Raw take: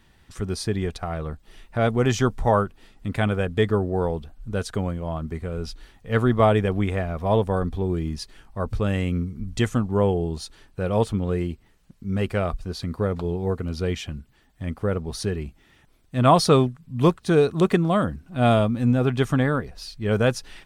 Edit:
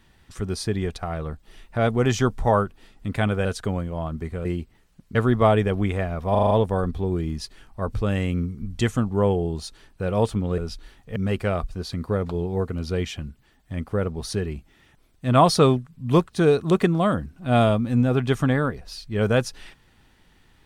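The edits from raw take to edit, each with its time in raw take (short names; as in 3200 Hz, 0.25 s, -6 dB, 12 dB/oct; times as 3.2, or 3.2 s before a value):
3.45–4.55 cut
5.55–6.13 swap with 11.36–12.06
7.29 stutter 0.04 s, 6 plays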